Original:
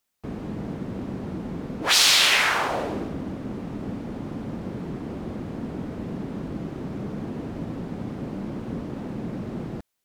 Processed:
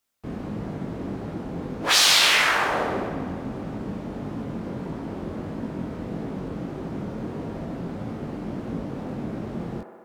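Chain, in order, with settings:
chorus effect 1.6 Hz, delay 18 ms, depth 5.6 ms
on a send: delay with a band-pass on its return 65 ms, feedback 77%, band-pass 860 Hz, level −5.5 dB
on the sum: level +3 dB

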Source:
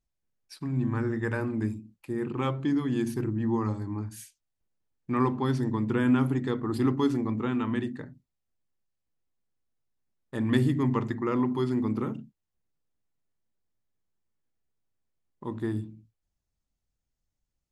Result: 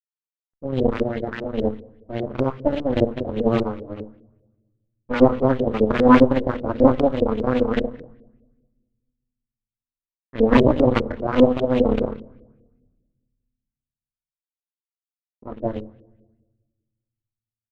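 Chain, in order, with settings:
running median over 15 samples
in parallel at −6 dB: sample-rate reduction 3,500 Hz, jitter 20%
on the sum: parametric band 520 Hz −13 dB 0.75 octaves
double-tracking delay 23 ms −7 dB
low-pass that shuts in the quiet parts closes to 2,100 Hz, open at −20 dBFS
graphic EQ with 10 bands 125 Hz −8 dB, 250 Hz +9 dB, 4,000 Hz +7 dB, 8,000 Hz +11 dB
slack as between gear wheels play −39.5 dBFS
harmonic generator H 5 −24 dB, 6 −8 dB, 7 −17 dB, 8 −23 dB, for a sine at −4 dBFS
on a send at −19.5 dB: convolution reverb RT60 1.2 s, pre-delay 7 ms
on the sum: auto-filter low-pass saw up 5 Hz 380–3,200 Hz
level −1.5 dB

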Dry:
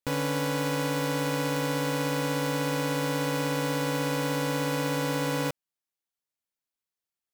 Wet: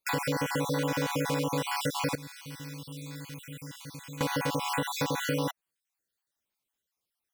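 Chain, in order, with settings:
time-frequency cells dropped at random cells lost 47%
0:02.15–0:04.21: guitar amp tone stack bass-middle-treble 6-0-2
downward compressor 4 to 1, threshold −34 dBFS, peak gain reduction 7.5 dB
level +7 dB

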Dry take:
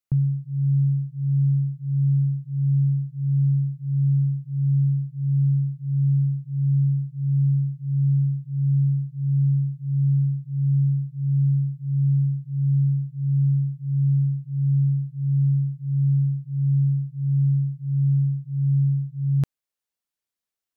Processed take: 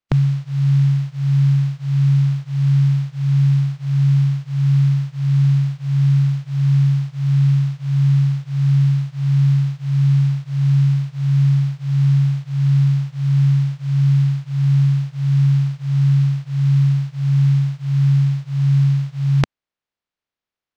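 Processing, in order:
compressing power law on the bin magnitudes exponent 0.48
high-frequency loss of the air 170 metres
level +6 dB

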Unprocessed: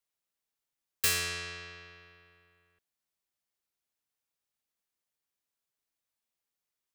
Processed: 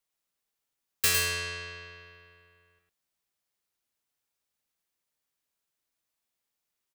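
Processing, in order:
single-tap delay 105 ms −5 dB
level +2.5 dB

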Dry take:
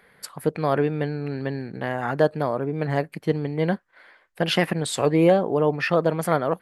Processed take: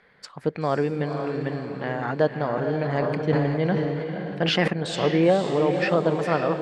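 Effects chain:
low-pass filter 6,600 Hz 24 dB per octave
feedback delay with all-pass diffusion 508 ms, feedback 44%, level −6 dB
0:02.47–0:04.68: level that may fall only so fast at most 25 dB per second
level −2 dB

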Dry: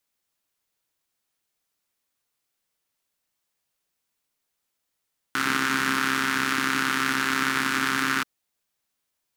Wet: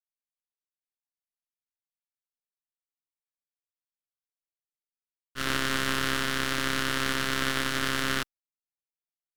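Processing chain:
half-wave rectification
downward expander −24 dBFS

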